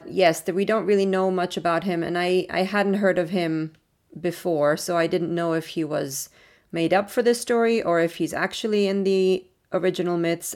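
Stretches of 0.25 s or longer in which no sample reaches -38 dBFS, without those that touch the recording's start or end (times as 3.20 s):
3.69–4.13 s
6.26–6.73 s
9.40–9.72 s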